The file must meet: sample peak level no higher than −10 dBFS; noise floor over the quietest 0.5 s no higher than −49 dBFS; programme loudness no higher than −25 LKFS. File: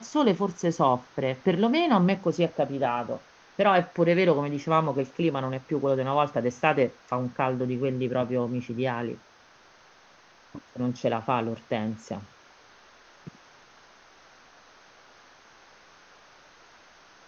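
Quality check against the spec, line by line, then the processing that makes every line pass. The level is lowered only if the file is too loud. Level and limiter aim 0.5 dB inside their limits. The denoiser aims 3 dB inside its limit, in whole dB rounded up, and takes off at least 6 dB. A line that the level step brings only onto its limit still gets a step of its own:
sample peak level −6.0 dBFS: out of spec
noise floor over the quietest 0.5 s −56 dBFS: in spec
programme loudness −26.5 LKFS: in spec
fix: brickwall limiter −10.5 dBFS

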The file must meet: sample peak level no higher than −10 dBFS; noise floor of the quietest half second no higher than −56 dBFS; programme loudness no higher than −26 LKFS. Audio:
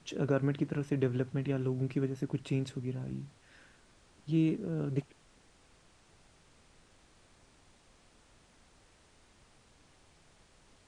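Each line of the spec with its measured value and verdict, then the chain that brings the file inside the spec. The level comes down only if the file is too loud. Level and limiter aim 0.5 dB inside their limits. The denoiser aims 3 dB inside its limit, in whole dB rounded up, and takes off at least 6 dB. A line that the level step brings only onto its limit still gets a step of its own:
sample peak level −17.0 dBFS: in spec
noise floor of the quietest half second −63 dBFS: in spec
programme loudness −34.0 LKFS: in spec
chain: no processing needed

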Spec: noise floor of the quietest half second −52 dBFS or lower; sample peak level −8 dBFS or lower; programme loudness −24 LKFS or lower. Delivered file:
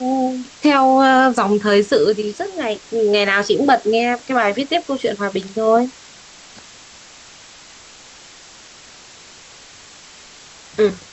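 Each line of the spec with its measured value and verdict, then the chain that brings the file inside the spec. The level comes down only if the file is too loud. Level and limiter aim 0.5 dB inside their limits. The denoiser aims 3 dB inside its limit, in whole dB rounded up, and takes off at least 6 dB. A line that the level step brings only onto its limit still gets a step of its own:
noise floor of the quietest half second −42 dBFS: out of spec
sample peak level −4.0 dBFS: out of spec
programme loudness −16.5 LKFS: out of spec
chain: broadband denoise 6 dB, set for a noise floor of −42 dBFS
level −8 dB

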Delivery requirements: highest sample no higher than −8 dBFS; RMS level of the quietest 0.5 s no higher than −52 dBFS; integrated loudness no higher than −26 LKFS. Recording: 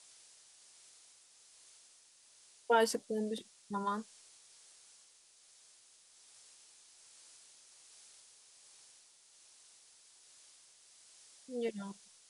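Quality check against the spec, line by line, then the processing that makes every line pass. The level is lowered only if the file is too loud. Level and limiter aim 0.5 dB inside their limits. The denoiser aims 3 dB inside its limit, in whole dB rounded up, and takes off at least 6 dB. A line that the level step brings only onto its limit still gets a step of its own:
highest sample −18.0 dBFS: in spec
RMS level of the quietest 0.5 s −64 dBFS: in spec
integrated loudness −36.0 LKFS: in spec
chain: no processing needed

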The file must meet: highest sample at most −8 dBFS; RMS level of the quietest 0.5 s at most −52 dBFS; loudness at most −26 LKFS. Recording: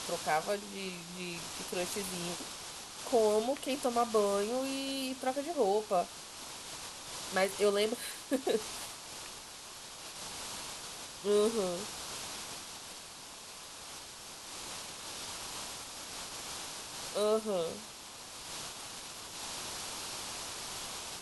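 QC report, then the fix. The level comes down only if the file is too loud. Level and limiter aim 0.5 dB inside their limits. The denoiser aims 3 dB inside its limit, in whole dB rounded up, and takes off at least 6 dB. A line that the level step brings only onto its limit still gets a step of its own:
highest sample −16.5 dBFS: in spec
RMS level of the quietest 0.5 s −49 dBFS: out of spec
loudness −36.0 LKFS: in spec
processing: broadband denoise 6 dB, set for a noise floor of −49 dBFS

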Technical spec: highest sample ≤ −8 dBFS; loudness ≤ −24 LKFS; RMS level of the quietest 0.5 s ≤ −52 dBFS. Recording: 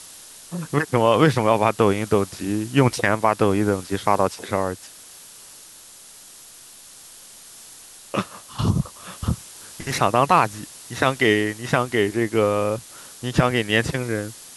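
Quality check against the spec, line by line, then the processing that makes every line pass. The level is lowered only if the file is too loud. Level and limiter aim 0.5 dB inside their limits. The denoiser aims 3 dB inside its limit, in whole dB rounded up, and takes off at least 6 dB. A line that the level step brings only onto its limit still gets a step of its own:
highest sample −4.0 dBFS: out of spec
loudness −21.5 LKFS: out of spec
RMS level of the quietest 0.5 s −45 dBFS: out of spec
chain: broadband denoise 7 dB, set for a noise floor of −45 dBFS
level −3 dB
brickwall limiter −8.5 dBFS

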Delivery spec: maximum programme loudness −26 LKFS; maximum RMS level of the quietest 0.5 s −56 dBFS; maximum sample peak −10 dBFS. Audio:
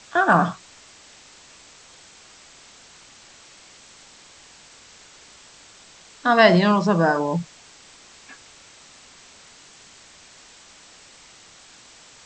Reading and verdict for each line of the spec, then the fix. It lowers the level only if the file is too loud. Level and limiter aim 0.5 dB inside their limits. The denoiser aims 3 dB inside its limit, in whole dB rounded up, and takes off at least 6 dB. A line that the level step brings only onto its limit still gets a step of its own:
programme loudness −18.5 LKFS: out of spec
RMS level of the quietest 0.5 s −49 dBFS: out of spec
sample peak −1.5 dBFS: out of spec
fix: level −8 dB
brickwall limiter −10.5 dBFS

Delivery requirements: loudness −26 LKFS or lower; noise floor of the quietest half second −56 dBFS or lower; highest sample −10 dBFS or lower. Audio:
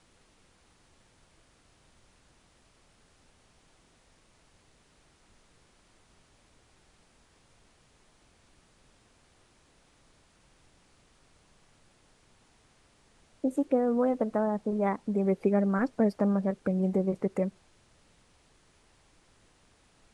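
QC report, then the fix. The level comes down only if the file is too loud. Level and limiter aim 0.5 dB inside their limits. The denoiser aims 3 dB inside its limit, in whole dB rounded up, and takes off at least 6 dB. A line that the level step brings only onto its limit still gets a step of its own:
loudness −28.5 LKFS: in spec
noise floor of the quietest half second −64 dBFS: in spec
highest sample −14.0 dBFS: in spec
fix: no processing needed

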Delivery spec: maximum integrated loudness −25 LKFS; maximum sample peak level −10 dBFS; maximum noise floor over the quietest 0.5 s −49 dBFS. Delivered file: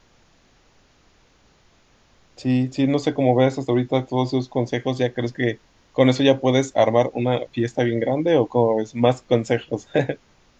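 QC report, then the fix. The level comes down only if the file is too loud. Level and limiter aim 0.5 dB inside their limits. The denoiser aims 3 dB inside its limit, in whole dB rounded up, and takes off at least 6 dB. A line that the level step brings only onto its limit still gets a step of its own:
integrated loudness −21.0 LKFS: out of spec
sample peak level −2.5 dBFS: out of spec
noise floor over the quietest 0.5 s −57 dBFS: in spec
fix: level −4.5 dB
brickwall limiter −10.5 dBFS

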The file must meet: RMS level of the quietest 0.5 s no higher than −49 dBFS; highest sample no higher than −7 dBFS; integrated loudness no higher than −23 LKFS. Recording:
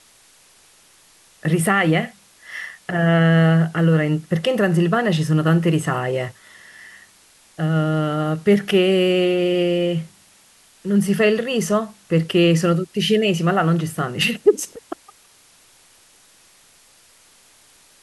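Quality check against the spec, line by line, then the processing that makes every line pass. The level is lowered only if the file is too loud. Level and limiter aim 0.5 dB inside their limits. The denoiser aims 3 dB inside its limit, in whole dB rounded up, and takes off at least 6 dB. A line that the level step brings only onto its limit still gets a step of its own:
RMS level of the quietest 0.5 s −53 dBFS: in spec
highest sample −3.0 dBFS: out of spec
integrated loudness −19.0 LKFS: out of spec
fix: level −4.5 dB

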